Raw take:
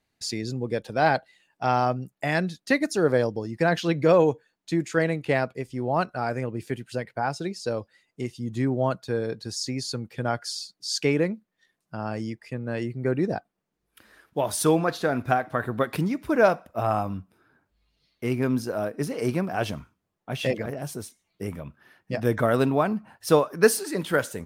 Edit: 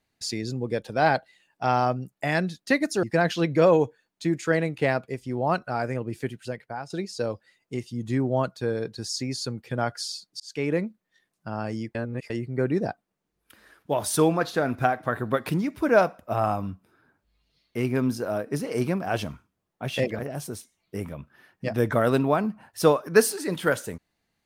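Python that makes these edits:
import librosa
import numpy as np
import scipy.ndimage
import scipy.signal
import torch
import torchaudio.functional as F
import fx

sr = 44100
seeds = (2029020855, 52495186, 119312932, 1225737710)

y = fx.edit(x, sr, fx.cut(start_s=3.03, length_s=0.47),
    fx.fade_out_to(start_s=6.73, length_s=0.64, floor_db=-11.5),
    fx.fade_in_span(start_s=10.87, length_s=0.41),
    fx.reverse_span(start_s=12.42, length_s=0.35), tone=tone)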